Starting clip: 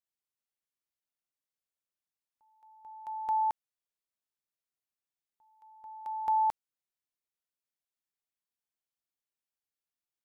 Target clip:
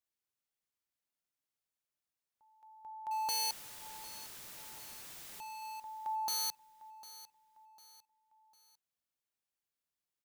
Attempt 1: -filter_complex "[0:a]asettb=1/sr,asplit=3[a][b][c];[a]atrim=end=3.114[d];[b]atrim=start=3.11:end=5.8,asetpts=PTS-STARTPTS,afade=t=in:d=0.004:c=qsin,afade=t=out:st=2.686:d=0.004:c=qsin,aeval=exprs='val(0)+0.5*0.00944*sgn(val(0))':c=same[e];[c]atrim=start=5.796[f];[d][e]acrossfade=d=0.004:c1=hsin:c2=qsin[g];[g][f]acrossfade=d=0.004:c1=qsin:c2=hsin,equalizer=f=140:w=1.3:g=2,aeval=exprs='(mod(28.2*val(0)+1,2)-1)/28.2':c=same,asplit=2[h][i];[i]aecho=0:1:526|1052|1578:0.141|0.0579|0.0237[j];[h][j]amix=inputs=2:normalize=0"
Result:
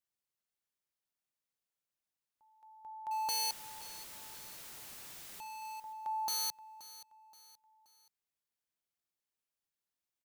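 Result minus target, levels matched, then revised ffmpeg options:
echo 0.225 s early
-filter_complex "[0:a]asettb=1/sr,asplit=3[a][b][c];[a]atrim=end=3.114[d];[b]atrim=start=3.11:end=5.8,asetpts=PTS-STARTPTS,afade=t=in:d=0.004:c=qsin,afade=t=out:st=2.686:d=0.004:c=qsin,aeval=exprs='val(0)+0.5*0.00944*sgn(val(0))':c=same[e];[c]atrim=start=5.796[f];[d][e]acrossfade=d=0.004:c1=hsin:c2=qsin[g];[g][f]acrossfade=d=0.004:c1=qsin:c2=hsin,equalizer=f=140:w=1.3:g=2,aeval=exprs='(mod(28.2*val(0)+1,2)-1)/28.2':c=same,asplit=2[h][i];[i]aecho=0:1:751|1502|2253:0.141|0.0579|0.0237[j];[h][j]amix=inputs=2:normalize=0"

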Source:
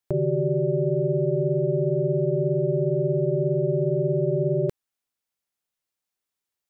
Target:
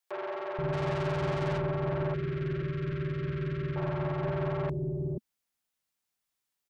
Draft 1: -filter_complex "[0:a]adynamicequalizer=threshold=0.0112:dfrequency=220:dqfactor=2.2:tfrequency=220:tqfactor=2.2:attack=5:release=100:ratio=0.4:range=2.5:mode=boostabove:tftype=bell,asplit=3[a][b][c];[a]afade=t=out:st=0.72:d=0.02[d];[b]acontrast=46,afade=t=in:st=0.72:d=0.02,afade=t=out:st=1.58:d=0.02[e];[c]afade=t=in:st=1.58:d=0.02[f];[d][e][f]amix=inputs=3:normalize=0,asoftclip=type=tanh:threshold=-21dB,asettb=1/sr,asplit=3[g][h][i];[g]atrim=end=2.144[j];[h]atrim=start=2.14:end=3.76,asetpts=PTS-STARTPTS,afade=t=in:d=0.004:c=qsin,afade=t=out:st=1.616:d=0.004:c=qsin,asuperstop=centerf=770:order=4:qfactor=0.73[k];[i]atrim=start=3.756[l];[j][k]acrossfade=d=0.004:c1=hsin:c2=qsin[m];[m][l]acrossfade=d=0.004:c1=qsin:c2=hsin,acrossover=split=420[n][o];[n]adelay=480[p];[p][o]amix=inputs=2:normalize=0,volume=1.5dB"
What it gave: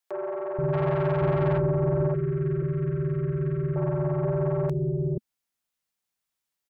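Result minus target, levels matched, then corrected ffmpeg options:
soft clip: distortion -4 dB
-filter_complex "[0:a]adynamicequalizer=threshold=0.0112:dfrequency=220:dqfactor=2.2:tfrequency=220:tqfactor=2.2:attack=5:release=100:ratio=0.4:range=2.5:mode=boostabove:tftype=bell,asplit=3[a][b][c];[a]afade=t=out:st=0.72:d=0.02[d];[b]acontrast=46,afade=t=in:st=0.72:d=0.02,afade=t=out:st=1.58:d=0.02[e];[c]afade=t=in:st=1.58:d=0.02[f];[d][e][f]amix=inputs=3:normalize=0,asoftclip=type=tanh:threshold=-29.5dB,asettb=1/sr,asplit=3[g][h][i];[g]atrim=end=2.144[j];[h]atrim=start=2.14:end=3.76,asetpts=PTS-STARTPTS,afade=t=in:d=0.004:c=qsin,afade=t=out:st=1.616:d=0.004:c=qsin,asuperstop=centerf=770:order=4:qfactor=0.73[k];[i]atrim=start=3.756[l];[j][k]acrossfade=d=0.004:c1=hsin:c2=qsin[m];[m][l]acrossfade=d=0.004:c1=qsin:c2=hsin,acrossover=split=420[n][o];[n]adelay=480[p];[p][o]amix=inputs=2:normalize=0,volume=1.5dB"

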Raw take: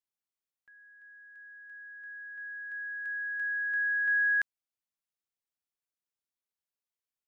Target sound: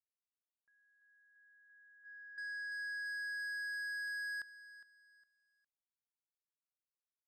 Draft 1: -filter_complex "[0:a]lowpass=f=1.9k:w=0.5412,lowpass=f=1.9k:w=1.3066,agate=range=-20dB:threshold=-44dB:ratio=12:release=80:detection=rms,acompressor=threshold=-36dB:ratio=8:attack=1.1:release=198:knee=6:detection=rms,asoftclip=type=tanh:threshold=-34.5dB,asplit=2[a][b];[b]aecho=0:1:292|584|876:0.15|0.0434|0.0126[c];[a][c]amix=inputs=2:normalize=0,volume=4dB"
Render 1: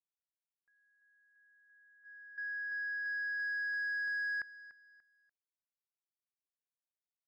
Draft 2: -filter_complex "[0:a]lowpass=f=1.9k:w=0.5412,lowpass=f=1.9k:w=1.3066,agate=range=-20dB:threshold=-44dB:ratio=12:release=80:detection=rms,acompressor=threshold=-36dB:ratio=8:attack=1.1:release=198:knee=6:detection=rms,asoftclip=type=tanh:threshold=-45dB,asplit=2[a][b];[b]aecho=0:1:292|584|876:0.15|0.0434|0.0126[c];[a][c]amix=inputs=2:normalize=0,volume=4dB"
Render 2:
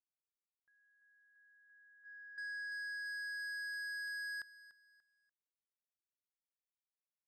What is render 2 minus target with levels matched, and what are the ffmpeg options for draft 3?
echo 0.117 s early
-filter_complex "[0:a]lowpass=f=1.9k:w=0.5412,lowpass=f=1.9k:w=1.3066,agate=range=-20dB:threshold=-44dB:ratio=12:release=80:detection=rms,acompressor=threshold=-36dB:ratio=8:attack=1.1:release=198:knee=6:detection=rms,asoftclip=type=tanh:threshold=-45dB,asplit=2[a][b];[b]aecho=0:1:409|818|1227:0.15|0.0434|0.0126[c];[a][c]amix=inputs=2:normalize=0,volume=4dB"

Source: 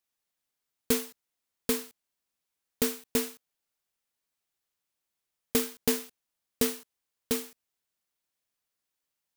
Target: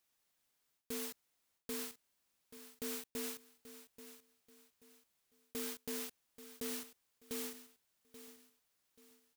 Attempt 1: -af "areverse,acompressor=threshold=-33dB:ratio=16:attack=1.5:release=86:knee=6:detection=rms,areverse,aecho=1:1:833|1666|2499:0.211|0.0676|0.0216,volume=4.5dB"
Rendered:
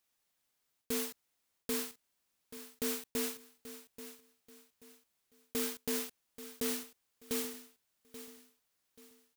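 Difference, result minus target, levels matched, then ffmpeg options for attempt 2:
compressor: peak gain reduction -7 dB
-af "areverse,acompressor=threshold=-40.5dB:ratio=16:attack=1.5:release=86:knee=6:detection=rms,areverse,aecho=1:1:833|1666|2499:0.211|0.0676|0.0216,volume=4.5dB"

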